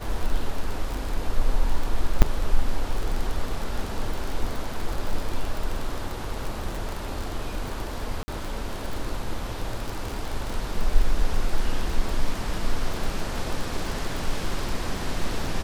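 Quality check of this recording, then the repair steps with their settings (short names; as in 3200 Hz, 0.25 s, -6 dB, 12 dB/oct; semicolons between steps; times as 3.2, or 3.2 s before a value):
crackle 36/s -26 dBFS
2.22–2.23 gap 7.7 ms
8.23–8.28 gap 50 ms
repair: de-click; interpolate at 2.22, 7.7 ms; interpolate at 8.23, 50 ms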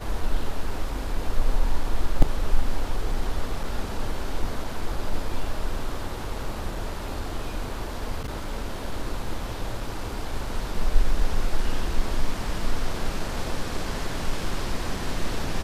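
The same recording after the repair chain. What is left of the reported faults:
none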